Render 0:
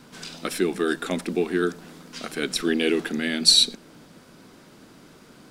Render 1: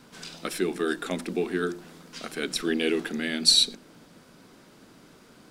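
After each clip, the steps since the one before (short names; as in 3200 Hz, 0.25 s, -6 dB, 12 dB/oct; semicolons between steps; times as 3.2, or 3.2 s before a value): notches 50/100/150/200/250/300/350 Hz; gain -3 dB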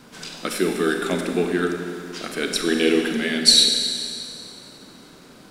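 Schroeder reverb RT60 2.4 s, combs from 31 ms, DRR 3.5 dB; gain +5 dB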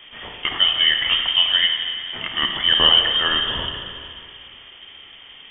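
inverted band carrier 3400 Hz; gain +4 dB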